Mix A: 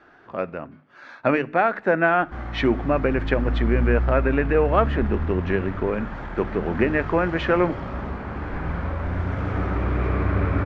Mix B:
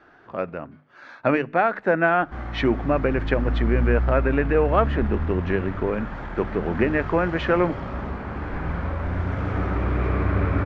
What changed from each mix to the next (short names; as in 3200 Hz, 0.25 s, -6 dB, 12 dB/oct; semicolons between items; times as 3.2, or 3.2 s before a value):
speech: send -7.5 dB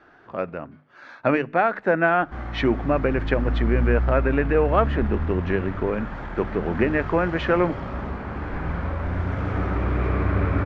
none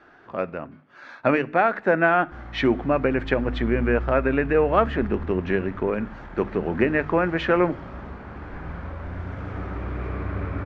speech: send +8.5 dB; background -7.0 dB